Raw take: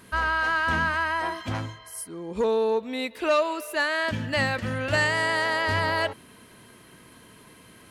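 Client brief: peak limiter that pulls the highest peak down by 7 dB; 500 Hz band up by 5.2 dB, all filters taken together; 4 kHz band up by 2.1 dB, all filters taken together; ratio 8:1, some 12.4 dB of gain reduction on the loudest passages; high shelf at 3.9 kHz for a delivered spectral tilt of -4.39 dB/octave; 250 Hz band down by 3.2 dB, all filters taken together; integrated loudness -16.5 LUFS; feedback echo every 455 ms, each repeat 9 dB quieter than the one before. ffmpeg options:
-af "equalizer=f=250:t=o:g=-7,equalizer=f=500:t=o:g=8,highshelf=f=3900:g=-6.5,equalizer=f=4000:t=o:g=6.5,acompressor=threshold=0.0447:ratio=8,alimiter=level_in=1.06:limit=0.0631:level=0:latency=1,volume=0.944,aecho=1:1:455|910|1365|1820:0.355|0.124|0.0435|0.0152,volume=6.68"

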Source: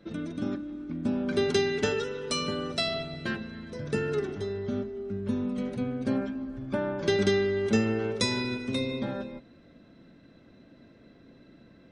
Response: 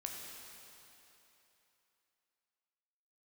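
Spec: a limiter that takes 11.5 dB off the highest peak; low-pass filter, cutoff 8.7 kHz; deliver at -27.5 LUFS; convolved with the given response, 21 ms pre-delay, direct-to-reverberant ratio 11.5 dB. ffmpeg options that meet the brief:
-filter_complex "[0:a]lowpass=8700,alimiter=limit=0.0668:level=0:latency=1,asplit=2[s0][s1];[1:a]atrim=start_sample=2205,adelay=21[s2];[s1][s2]afir=irnorm=-1:irlink=0,volume=0.299[s3];[s0][s3]amix=inputs=2:normalize=0,volume=1.88"

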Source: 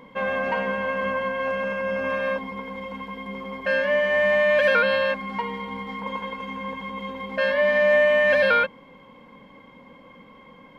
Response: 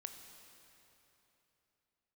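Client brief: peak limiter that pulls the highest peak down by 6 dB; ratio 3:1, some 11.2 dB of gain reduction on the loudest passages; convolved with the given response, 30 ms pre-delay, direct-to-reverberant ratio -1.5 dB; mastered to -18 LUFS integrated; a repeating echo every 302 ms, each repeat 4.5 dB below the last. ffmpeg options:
-filter_complex "[0:a]acompressor=threshold=0.0251:ratio=3,alimiter=level_in=1.33:limit=0.0631:level=0:latency=1,volume=0.75,aecho=1:1:302|604|906|1208|1510|1812|2114|2416|2718:0.596|0.357|0.214|0.129|0.0772|0.0463|0.0278|0.0167|0.01,asplit=2[s0][s1];[1:a]atrim=start_sample=2205,adelay=30[s2];[s1][s2]afir=irnorm=-1:irlink=0,volume=1.88[s3];[s0][s3]amix=inputs=2:normalize=0,volume=2.99"

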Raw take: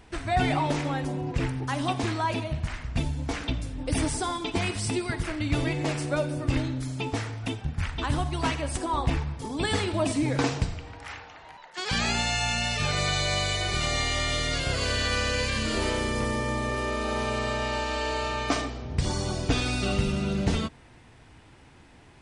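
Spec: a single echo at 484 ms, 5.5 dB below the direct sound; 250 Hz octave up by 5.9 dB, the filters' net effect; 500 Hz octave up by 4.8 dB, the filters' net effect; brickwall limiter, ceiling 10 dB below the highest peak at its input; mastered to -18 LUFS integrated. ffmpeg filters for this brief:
-af "equalizer=f=250:t=o:g=6,equalizer=f=500:t=o:g=4.5,alimiter=limit=0.112:level=0:latency=1,aecho=1:1:484:0.531,volume=2.99"

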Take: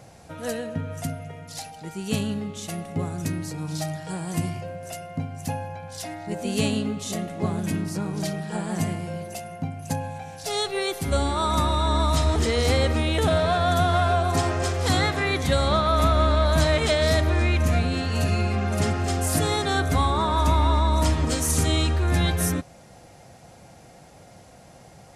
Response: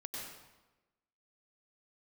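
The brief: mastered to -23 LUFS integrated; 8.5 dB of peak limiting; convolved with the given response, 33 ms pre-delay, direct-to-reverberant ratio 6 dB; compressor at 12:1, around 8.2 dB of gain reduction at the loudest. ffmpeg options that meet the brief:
-filter_complex "[0:a]acompressor=threshold=0.0631:ratio=12,alimiter=limit=0.075:level=0:latency=1,asplit=2[s0][s1];[1:a]atrim=start_sample=2205,adelay=33[s2];[s1][s2]afir=irnorm=-1:irlink=0,volume=0.562[s3];[s0][s3]amix=inputs=2:normalize=0,volume=2.51"

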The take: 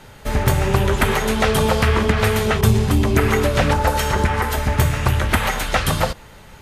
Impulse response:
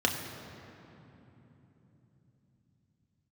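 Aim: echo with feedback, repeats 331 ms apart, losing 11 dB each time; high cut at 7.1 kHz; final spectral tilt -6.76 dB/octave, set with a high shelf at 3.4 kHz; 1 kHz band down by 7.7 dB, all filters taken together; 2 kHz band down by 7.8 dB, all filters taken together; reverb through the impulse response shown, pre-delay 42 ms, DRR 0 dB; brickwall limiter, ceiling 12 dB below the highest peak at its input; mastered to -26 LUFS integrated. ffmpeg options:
-filter_complex "[0:a]lowpass=7100,equalizer=f=1000:t=o:g=-8,equalizer=f=2000:t=o:g=-5.5,highshelf=f=3400:g=-5.5,alimiter=limit=0.178:level=0:latency=1,aecho=1:1:331|662|993:0.282|0.0789|0.0221,asplit=2[s0][s1];[1:a]atrim=start_sample=2205,adelay=42[s2];[s1][s2]afir=irnorm=-1:irlink=0,volume=0.299[s3];[s0][s3]amix=inputs=2:normalize=0,volume=0.473"

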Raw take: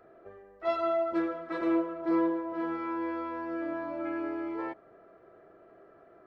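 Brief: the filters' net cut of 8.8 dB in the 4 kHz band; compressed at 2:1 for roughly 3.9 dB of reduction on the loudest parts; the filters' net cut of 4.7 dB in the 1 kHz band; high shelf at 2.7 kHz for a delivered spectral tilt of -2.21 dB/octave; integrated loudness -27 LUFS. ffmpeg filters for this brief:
-af "equalizer=f=1000:t=o:g=-5,highshelf=f=2700:g=-8.5,equalizer=f=4000:t=o:g=-4,acompressor=threshold=0.0282:ratio=2,volume=2.66"

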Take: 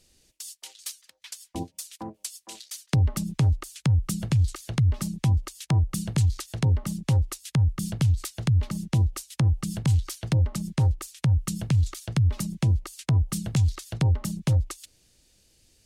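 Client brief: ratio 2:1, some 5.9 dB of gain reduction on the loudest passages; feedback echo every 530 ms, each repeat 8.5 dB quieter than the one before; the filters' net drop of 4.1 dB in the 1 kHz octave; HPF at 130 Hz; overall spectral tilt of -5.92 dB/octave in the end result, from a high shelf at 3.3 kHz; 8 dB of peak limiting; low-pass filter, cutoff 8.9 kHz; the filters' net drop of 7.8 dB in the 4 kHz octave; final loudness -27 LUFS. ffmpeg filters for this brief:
-af "highpass=130,lowpass=8900,equalizer=f=1000:t=o:g=-4.5,highshelf=f=3300:g=-5,equalizer=f=4000:t=o:g=-6,acompressor=threshold=0.0251:ratio=2,alimiter=level_in=1.68:limit=0.0631:level=0:latency=1,volume=0.596,aecho=1:1:530|1060|1590|2120:0.376|0.143|0.0543|0.0206,volume=3.55"

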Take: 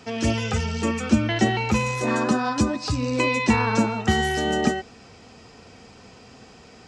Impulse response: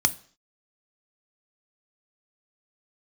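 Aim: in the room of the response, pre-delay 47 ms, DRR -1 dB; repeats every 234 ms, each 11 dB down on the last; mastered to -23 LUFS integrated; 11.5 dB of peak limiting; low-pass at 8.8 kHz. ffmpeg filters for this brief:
-filter_complex "[0:a]lowpass=8800,alimiter=limit=0.15:level=0:latency=1,aecho=1:1:234|468|702:0.282|0.0789|0.0221,asplit=2[s0][s1];[1:a]atrim=start_sample=2205,adelay=47[s2];[s1][s2]afir=irnorm=-1:irlink=0,volume=0.316[s3];[s0][s3]amix=inputs=2:normalize=0,volume=0.794"

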